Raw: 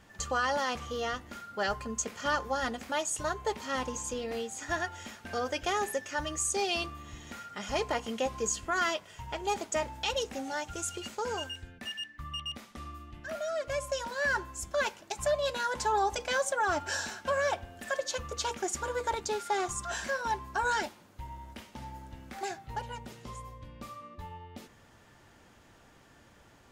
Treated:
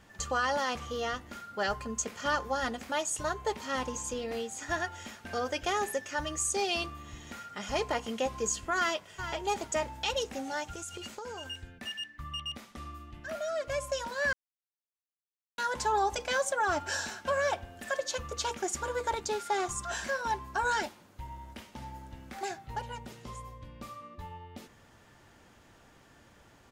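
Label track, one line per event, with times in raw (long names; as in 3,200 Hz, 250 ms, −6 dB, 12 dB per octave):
8.760000	9.300000	delay throw 420 ms, feedback 10%, level −10 dB
10.750000	11.460000	downward compressor, threshold −37 dBFS
14.330000	15.580000	silence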